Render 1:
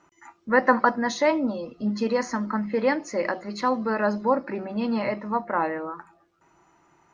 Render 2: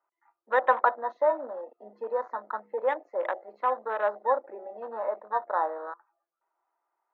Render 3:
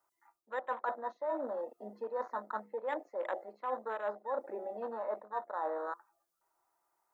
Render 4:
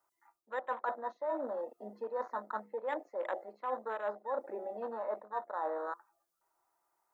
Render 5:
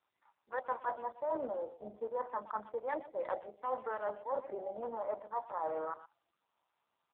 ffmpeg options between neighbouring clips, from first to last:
-af "lowpass=1300,afwtdn=0.0224,highpass=f=530:w=0.5412,highpass=f=530:w=1.3066"
-af "bass=f=250:g=10,treble=f=4000:g=11,areverse,acompressor=threshold=0.0224:ratio=8,areverse"
-af anull
-filter_complex "[0:a]asplit=2[s0][s1];[s1]adelay=120,highpass=300,lowpass=3400,asoftclip=type=hard:threshold=0.0282,volume=0.178[s2];[s0][s2]amix=inputs=2:normalize=0,acrossover=split=830[s3][s4];[s3]crystalizer=i=6:c=0[s5];[s5][s4]amix=inputs=2:normalize=0" -ar 8000 -c:a libopencore_amrnb -b:a 5900

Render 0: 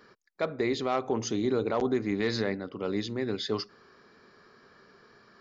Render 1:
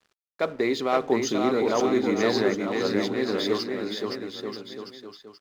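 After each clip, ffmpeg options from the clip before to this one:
-filter_complex "[0:a]highpass=190,aeval=exprs='sgn(val(0))*max(abs(val(0))-0.00237,0)':c=same,asplit=2[s0][s1];[s1]aecho=0:1:520|936|1269|1535|1748:0.631|0.398|0.251|0.158|0.1[s2];[s0][s2]amix=inputs=2:normalize=0,volume=1.68"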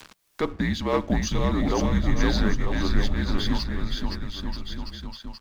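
-af "afreqshift=-180,acompressor=mode=upward:threshold=0.0355:ratio=2.5,asubboost=boost=7.5:cutoff=50"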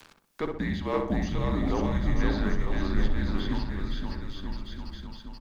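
-filter_complex "[0:a]acrossover=split=3400[s0][s1];[s1]acompressor=threshold=0.00562:ratio=4:attack=1:release=60[s2];[s0][s2]amix=inputs=2:normalize=0,asplit=2[s3][s4];[s4]adelay=63,lowpass=f=1500:p=1,volume=0.668,asplit=2[s5][s6];[s6]adelay=63,lowpass=f=1500:p=1,volume=0.49,asplit=2[s7][s8];[s8]adelay=63,lowpass=f=1500:p=1,volume=0.49,asplit=2[s9][s10];[s10]adelay=63,lowpass=f=1500:p=1,volume=0.49,asplit=2[s11][s12];[s12]adelay=63,lowpass=f=1500:p=1,volume=0.49,asplit=2[s13][s14];[s14]adelay=63,lowpass=f=1500:p=1,volume=0.49[s15];[s3][s5][s7][s9][s11][s13][s15]amix=inputs=7:normalize=0,volume=0.531"

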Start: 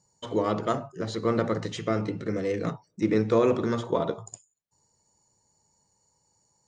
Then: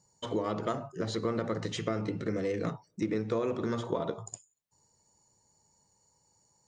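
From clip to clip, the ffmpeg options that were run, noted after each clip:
-af "acompressor=threshold=0.0398:ratio=5"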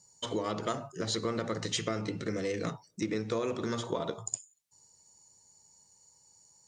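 -af "equalizer=f=8100:w=0.3:g=11,volume=0.794"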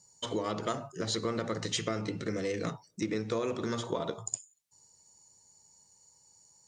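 -af anull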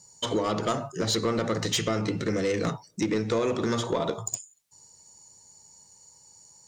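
-af "asoftclip=type=tanh:threshold=0.0531,volume=2.51"

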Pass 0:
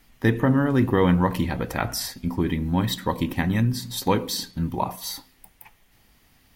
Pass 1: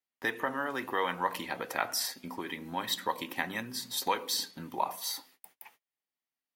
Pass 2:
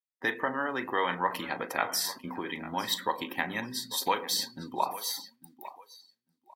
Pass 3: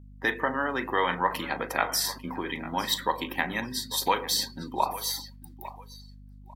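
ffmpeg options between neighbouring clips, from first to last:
-filter_complex "[0:a]highpass=370,agate=range=0.0282:threshold=0.00178:ratio=16:detection=peak,acrossover=split=640|5700[s0][s1][s2];[s0]acompressor=threshold=0.0158:ratio=6[s3];[s3][s1][s2]amix=inputs=3:normalize=0,volume=0.708"
-filter_complex "[0:a]asplit=2[s0][s1];[s1]adelay=39,volume=0.211[s2];[s0][s2]amix=inputs=2:normalize=0,aecho=1:1:848|1696|2544:0.178|0.0569|0.0182,afftdn=nr=19:nf=-49,volume=1.26"
-af "aeval=exprs='val(0)+0.00316*(sin(2*PI*50*n/s)+sin(2*PI*2*50*n/s)/2+sin(2*PI*3*50*n/s)/3+sin(2*PI*4*50*n/s)/4+sin(2*PI*5*50*n/s)/5)':c=same,volume=1.41"

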